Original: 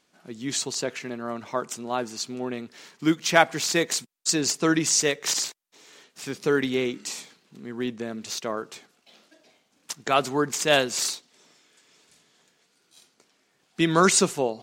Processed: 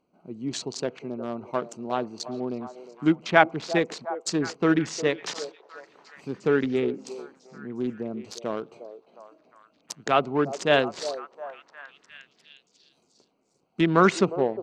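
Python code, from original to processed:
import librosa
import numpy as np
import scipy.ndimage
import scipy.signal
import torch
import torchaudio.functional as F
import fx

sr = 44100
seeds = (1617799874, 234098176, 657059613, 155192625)

y = fx.wiener(x, sr, points=25)
y = fx.env_lowpass_down(y, sr, base_hz=2700.0, full_db=-23.0)
y = fx.echo_stepped(y, sr, ms=356, hz=520.0, octaves=0.7, feedback_pct=70, wet_db=-10)
y = y * librosa.db_to_amplitude(1.0)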